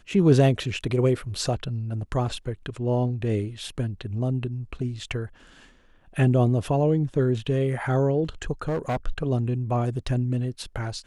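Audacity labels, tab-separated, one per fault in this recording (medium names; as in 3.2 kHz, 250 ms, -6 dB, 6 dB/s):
8.620000	8.970000	clipped -22 dBFS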